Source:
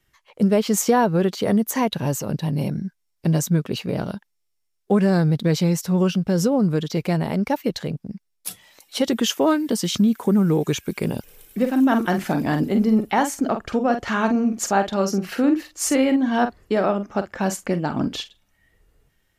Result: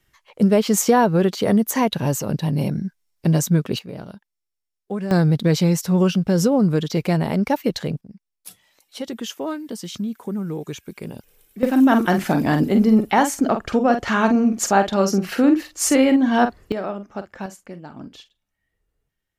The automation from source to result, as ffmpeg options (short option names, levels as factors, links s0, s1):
-af "asetnsamples=n=441:p=0,asendcmd='3.79 volume volume -9dB;5.11 volume volume 2dB;8.01 volume volume -9dB;11.63 volume volume 3dB;16.72 volume volume -7dB;17.46 volume volume -14dB',volume=1.26"